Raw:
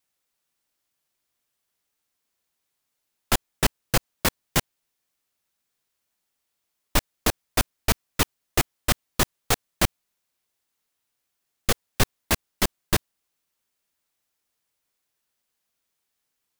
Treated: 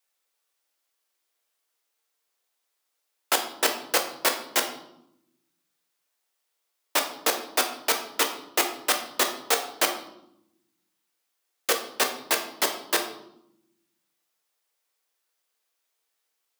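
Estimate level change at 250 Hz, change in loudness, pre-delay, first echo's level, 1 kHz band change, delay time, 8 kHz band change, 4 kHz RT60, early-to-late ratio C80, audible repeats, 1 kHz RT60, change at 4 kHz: -7.0 dB, +0.5 dB, 3 ms, no echo, +2.0 dB, no echo, +1.0 dB, 0.60 s, 11.5 dB, no echo, 0.75 s, +1.5 dB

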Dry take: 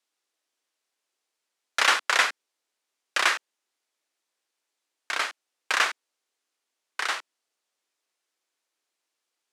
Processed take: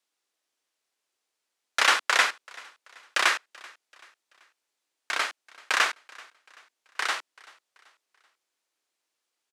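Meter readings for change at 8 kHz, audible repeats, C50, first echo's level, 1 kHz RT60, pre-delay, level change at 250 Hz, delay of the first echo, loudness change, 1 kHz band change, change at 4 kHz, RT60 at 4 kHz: 0.0 dB, 2, no reverb, -23.5 dB, no reverb, no reverb, 0.0 dB, 384 ms, 0.0 dB, 0.0 dB, 0.0 dB, no reverb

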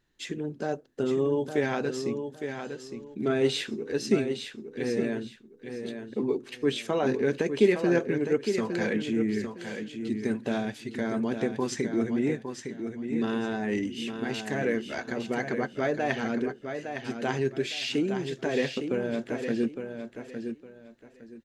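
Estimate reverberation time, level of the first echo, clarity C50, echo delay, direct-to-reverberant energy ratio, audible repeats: no reverb, -7.5 dB, no reverb, 860 ms, no reverb, 3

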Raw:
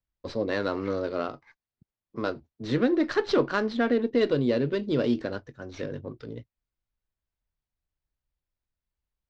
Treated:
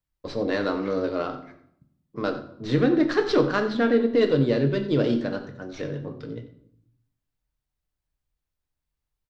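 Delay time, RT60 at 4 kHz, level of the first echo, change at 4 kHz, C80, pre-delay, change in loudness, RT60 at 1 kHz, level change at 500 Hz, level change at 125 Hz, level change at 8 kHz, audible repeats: 90 ms, 0.50 s, -15.0 dB, +2.5 dB, 12.0 dB, 6 ms, +3.0 dB, 0.65 s, +3.0 dB, +6.0 dB, no reading, 1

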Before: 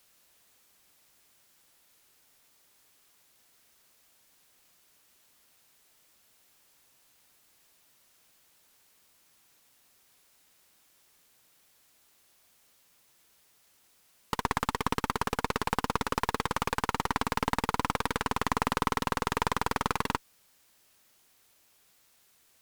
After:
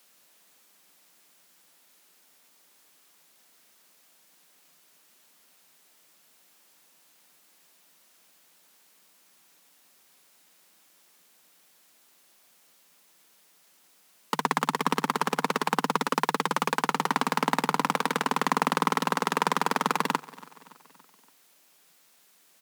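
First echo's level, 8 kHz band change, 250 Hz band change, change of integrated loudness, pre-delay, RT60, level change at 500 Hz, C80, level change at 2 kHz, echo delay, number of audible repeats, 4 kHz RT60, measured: -21.0 dB, +3.5 dB, +4.0 dB, +4.0 dB, no reverb, no reverb, +4.0 dB, no reverb, +4.0 dB, 284 ms, 3, no reverb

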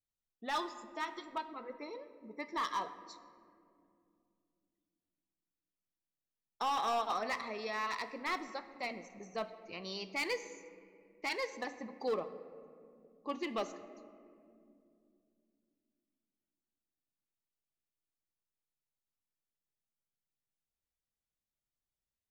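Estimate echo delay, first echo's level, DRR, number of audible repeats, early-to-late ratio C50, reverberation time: no echo, no echo, 10.5 dB, no echo, 12.5 dB, 2.5 s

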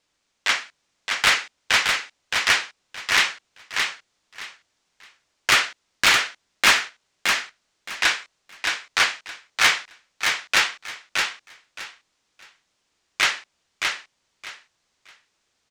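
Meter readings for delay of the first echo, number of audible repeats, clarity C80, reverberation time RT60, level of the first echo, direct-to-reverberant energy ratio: 619 ms, 3, no reverb, no reverb, -4.5 dB, no reverb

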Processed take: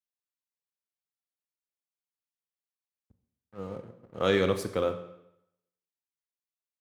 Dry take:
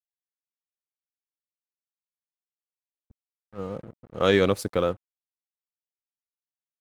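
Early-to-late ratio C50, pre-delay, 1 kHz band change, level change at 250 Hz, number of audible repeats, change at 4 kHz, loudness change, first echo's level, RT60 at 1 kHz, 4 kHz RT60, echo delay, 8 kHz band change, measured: 10.5 dB, 24 ms, -4.5 dB, -5.0 dB, no echo, -4.5 dB, -4.0 dB, no echo, 0.80 s, 0.75 s, no echo, -4.5 dB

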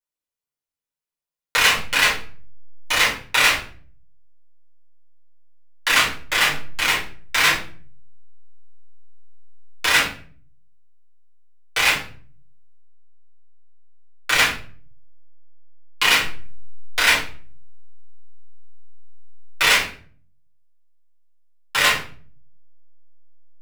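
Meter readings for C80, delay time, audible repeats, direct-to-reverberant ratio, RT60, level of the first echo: 12.5 dB, no echo, no echo, -8.0 dB, 0.45 s, no echo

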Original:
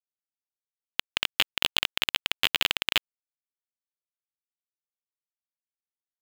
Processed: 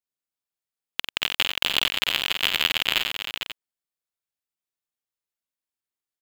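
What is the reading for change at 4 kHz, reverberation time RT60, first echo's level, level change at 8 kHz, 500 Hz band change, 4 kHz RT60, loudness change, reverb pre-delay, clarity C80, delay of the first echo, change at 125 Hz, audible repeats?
+3.5 dB, no reverb, -7.0 dB, +3.0 dB, +3.5 dB, no reverb, +3.0 dB, no reverb, no reverb, 49 ms, +3.0 dB, 5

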